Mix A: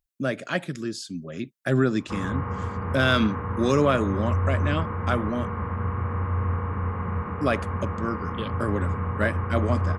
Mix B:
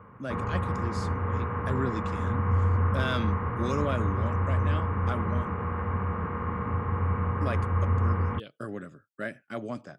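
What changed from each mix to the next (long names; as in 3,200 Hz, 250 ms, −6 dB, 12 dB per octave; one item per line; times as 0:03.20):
speech −9.5 dB
background: entry −1.80 s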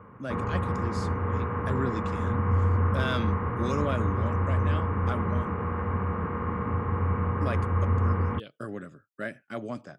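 background: add parametric band 320 Hz +3.5 dB 1.5 octaves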